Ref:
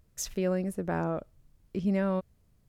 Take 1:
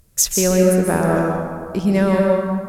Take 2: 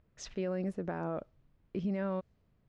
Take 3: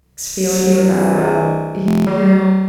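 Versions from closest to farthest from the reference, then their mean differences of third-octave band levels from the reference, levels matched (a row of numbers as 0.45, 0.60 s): 2, 1, 3; 3.0, 7.5, 10.0 dB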